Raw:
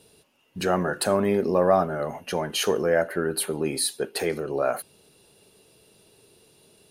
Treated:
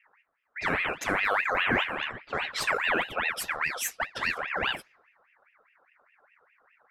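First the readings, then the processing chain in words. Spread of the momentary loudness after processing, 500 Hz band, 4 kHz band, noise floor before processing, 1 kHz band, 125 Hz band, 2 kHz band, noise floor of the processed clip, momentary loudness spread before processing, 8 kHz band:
8 LU, -13.0 dB, -2.0 dB, -59 dBFS, -2.0 dB, -11.0 dB, +7.5 dB, -68 dBFS, 8 LU, -7.5 dB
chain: in parallel at -1.5 dB: peak limiter -15.5 dBFS, peak gain reduction 7.5 dB; on the sum: comb of notches 280 Hz; level-controlled noise filter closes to 470 Hz, open at -17 dBFS; ring modulator with a swept carrier 1.6 kHz, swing 45%, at 4.9 Hz; trim -5 dB

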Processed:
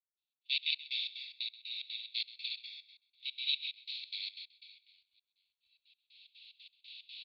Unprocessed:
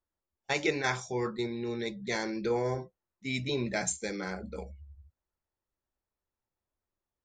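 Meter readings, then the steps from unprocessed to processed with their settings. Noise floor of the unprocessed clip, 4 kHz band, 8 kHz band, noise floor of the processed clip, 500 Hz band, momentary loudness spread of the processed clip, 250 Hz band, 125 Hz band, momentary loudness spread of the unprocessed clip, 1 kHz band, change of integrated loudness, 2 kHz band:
under -85 dBFS, +6.5 dB, under -35 dB, under -85 dBFS, under -40 dB, 22 LU, under -40 dB, under -40 dB, 13 LU, under -40 dB, -4.5 dB, -8.5 dB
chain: spectral levelling over time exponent 0.4; recorder AGC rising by 5.8 dB/s; steep high-pass 2.7 kHz 72 dB/octave; spectral noise reduction 14 dB; steep low-pass 4.5 kHz 96 dB/octave; reverse bouncing-ball echo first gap 70 ms, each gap 1.6×, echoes 5; crackle 16 per s -61 dBFS; trance gate "..xx.xx.x" 182 bpm -24 dB; delay 131 ms -15 dB; three bands expanded up and down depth 70%

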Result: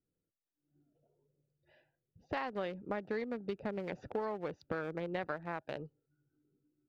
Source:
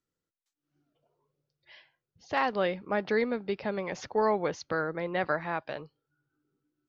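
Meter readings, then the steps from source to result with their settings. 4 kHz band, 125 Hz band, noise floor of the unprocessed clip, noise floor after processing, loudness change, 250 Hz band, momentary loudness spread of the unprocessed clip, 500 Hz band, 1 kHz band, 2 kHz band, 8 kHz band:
-10.5 dB, -5.0 dB, under -85 dBFS, under -85 dBFS, -9.0 dB, -6.5 dB, 7 LU, -9.0 dB, -10.5 dB, -10.5 dB, no reading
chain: local Wiener filter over 41 samples; compression 6:1, threshold -38 dBFS, peak gain reduction 15 dB; trim +3 dB

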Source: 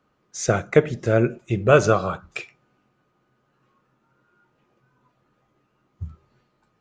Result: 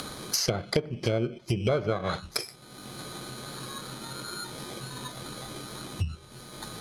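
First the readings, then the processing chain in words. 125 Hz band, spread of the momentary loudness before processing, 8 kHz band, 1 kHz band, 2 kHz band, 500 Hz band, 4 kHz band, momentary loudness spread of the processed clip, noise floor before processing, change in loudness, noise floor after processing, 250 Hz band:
-6.0 dB, 22 LU, +0.5 dB, -9.0 dB, -9.5 dB, -10.0 dB, +7.5 dB, 14 LU, -69 dBFS, -11.5 dB, -50 dBFS, -6.5 dB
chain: bit-reversed sample order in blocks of 16 samples; upward compressor, threshold -19 dBFS; low-pass that closes with the level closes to 1.4 kHz, closed at -15.5 dBFS; peaking EQ 5.1 kHz +9.5 dB 2.1 oct; compression 6:1, threshold -23 dBFS, peak gain reduction 13.5 dB

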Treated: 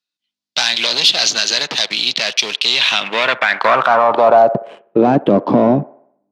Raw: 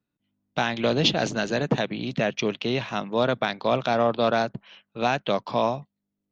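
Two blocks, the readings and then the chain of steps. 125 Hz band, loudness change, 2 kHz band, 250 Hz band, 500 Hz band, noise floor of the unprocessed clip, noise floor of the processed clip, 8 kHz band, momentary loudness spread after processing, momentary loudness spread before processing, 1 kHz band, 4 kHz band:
+4.0 dB, +11.5 dB, +12.0 dB, +9.0 dB, +9.0 dB, -83 dBFS, -85 dBFS, no reading, 5 LU, 6 LU, +11.5 dB, +15.5 dB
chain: waveshaping leveller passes 3; compression, threshold -17 dBFS, peak gain reduction 5.5 dB; on a send: feedback echo behind a band-pass 63 ms, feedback 52%, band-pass 840 Hz, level -18.5 dB; on the sum: band-pass sweep 4.5 kHz -> 290 Hz, 2.68–5.18 s; loudness maximiser +21.5 dB; trim -1 dB

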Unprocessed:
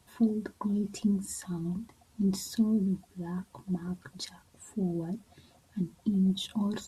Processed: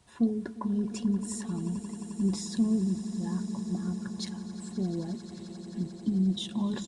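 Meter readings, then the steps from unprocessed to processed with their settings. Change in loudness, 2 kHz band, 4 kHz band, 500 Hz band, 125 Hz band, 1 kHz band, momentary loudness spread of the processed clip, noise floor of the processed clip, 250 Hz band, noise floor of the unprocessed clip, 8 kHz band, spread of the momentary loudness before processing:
+0.5 dB, +0.5 dB, +0.5 dB, +0.5 dB, +0.5 dB, +1.0 dB, 10 LU, -45 dBFS, +1.0 dB, -64 dBFS, +0.5 dB, 14 LU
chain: echo with a slow build-up 88 ms, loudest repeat 8, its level -17.5 dB; resampled via 22.05 kHz

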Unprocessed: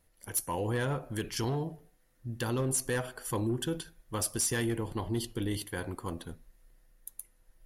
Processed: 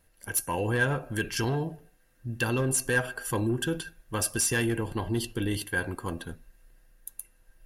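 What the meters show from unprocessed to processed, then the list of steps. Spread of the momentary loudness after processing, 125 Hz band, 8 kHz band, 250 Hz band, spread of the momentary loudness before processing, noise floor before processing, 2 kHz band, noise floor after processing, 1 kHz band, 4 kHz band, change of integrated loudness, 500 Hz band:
16 LU, +3.5 dB, +3.5 dB, +3.5 dB, 16 LU, -67 dBFS, +10.5 dB, -63 dBFS, +3.5 dB, +3.5 dB, +4.5 dB, +3.5 dB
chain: small resonant body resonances 1.6/2.7 kHz, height 16 dB, ringing for 85 ms; trim +3.5 dB

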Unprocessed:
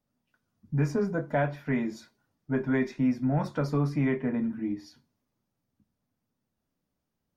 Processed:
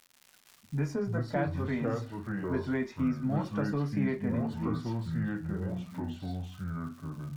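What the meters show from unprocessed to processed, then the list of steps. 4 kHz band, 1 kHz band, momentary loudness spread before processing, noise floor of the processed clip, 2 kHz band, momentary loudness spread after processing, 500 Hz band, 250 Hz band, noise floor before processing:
+0.5 dB, -2.0 dB, 7 LU, -62 dBFS, -3.0 dB, 8 LU, -3.0 dB, -2.5 dB, -83 dBFS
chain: crackle 140 per s -46 dBFS; ever faster or slower copies 153 ms, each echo -4 st, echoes 2; tape noise reduction on one side only encoder only; trim -5 dB

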